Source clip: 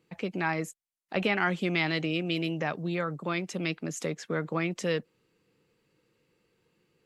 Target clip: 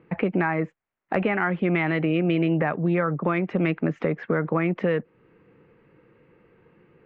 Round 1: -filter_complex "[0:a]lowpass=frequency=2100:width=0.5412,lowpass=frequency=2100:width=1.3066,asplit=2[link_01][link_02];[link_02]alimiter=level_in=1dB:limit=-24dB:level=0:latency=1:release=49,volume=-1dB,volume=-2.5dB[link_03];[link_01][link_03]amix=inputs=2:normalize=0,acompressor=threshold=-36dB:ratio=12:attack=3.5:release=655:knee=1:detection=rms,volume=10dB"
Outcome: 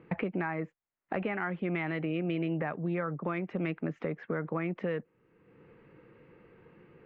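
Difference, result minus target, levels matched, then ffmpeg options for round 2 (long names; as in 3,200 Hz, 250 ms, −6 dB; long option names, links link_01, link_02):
downward compressor: peak gain reduction +9.5 dB
-filter_complex "[0:a]lowpass=frequency=2100:width=0.5412,lowpass=frequency=2100:width=1.3066,asplit=2[link_01][link_02];[link_02]alimiter=level_in=1dB:limit=-24dB:level=0:latency=1:release=49,volume=-1dB,volume=-2.5dB[link_03];[link_01][link_03]amix=inputs=2:normalize=0,acompressor=threshold=-25.5dB:ratio=12:attack=3.5:release=655:knee=1:detection=rms,volume=10dB"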